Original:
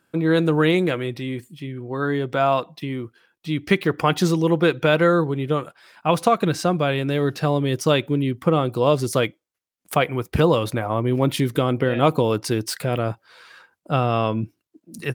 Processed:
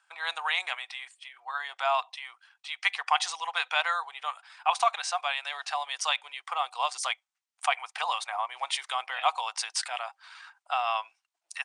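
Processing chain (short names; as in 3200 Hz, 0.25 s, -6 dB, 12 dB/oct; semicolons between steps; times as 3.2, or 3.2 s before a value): tempo 1.3×; dynamic EQ 1400 Hz, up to -5 dB, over -39 dBFS, Q 2.6; Chebyshev band-pass 750–9200 Hz, order 5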